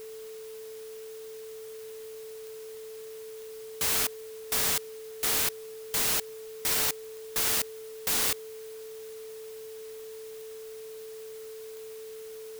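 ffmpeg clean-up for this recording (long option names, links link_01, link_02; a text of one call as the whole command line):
ffmpeg -i in.wav -af "adeclick=threshold=4,bandreject=frequency=440:width=30,afwtdn=0.0025" out.wav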